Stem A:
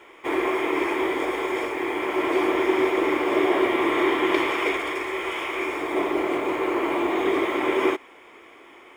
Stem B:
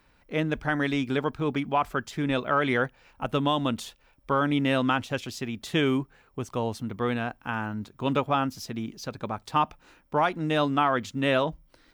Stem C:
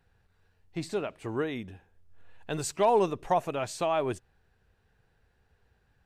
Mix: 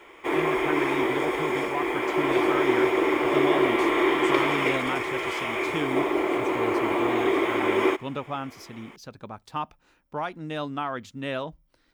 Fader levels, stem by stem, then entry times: −0.5, −7.0, −12.5 decibels; 0.00, 0.00, 1.60 seconds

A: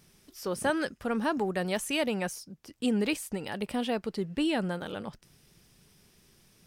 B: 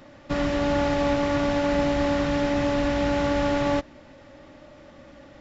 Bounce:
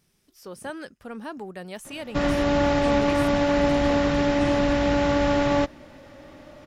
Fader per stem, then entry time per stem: −7.0, +2.0 decibels; 0.00, 1.85 seconds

